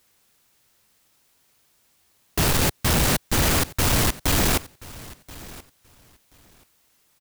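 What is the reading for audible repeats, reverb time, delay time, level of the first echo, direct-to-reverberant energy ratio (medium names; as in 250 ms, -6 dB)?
2, no reverb, 1030 ms, -20.0 dB, no reverb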